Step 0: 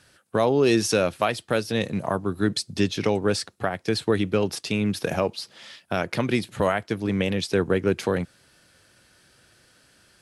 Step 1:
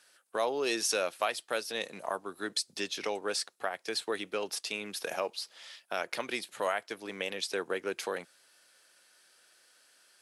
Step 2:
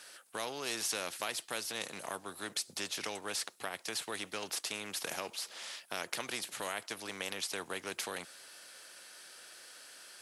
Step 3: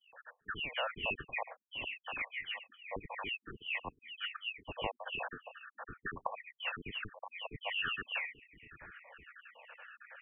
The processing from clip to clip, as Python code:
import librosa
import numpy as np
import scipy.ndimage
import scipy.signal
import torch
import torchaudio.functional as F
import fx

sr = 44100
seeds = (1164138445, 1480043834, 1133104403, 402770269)

y1 = scipy.signal.sosfilt(scipy.signal.butter(2, 530.0, 'highpass', fs=sr, output='sos'), x)
y1 = fx.high_shelf(y1, sr, hz=5000.0, db=5.5)
y1 = y1 * librosa.db_to_amplitude(-6.5)
y2 = fx.spectral_comp(y1, sr, ratio=2.0)
y3 = fx.spec_dropout(y2, sr, seeds[0], share_pct=74)
y3 = fx.dispersion(y3, sr, late='highs', ms=138.0, hz=590.0)
y3 = fx.freq_invert(y3, sr, carrier_hz=3200)
y3 = y3 * librosa.db_to_amplitude(7.5)